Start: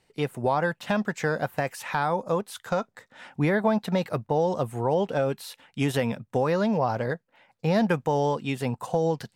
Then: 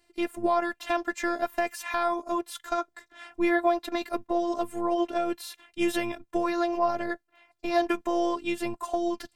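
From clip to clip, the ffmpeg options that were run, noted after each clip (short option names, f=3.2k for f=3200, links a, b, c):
-af "afftfilt=real='hypot(re,im)*cos(PI*b)':imag='0':win_size=512:overlap=0.75,volume=3.5dB"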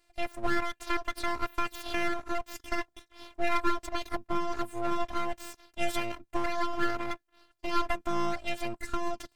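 -af "aeval=exprs='abs(val(0))':c=same,volume=-1.5dB"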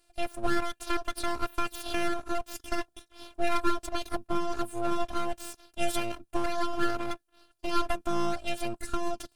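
-af "equalizer=f=1k:t=o:w=0.33:g=-4,equalizer=f=2k:t=o:w=0.33:g=-9,equalizer=f=10k:t=o:w=0.33:g=8,volume=2dB"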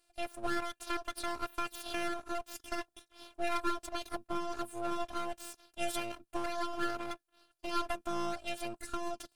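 -af "lowshelf=f=250:g=-7,volume=-4.5dB"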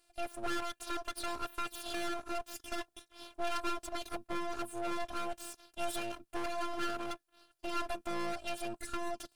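-af "asoftclip=type=tanh:threshold=-30.5dB,volume=2.5dB"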